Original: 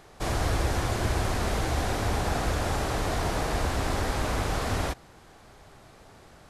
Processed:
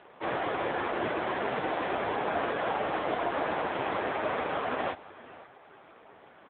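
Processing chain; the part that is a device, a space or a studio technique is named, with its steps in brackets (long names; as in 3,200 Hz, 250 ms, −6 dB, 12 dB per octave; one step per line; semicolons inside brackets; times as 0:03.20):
satellite phone (band-pass filter 300–3,200 Hz; single-tap delay 530 ms −18.5 dB; level +4.5 dB; AMR narrowband 5.9 kbit/s 8,000 Hz)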